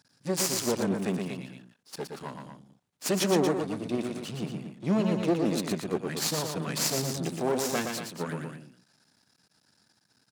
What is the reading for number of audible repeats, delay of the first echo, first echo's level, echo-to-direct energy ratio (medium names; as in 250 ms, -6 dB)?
2, 117 ms, -5.0 dB, -3.5 dB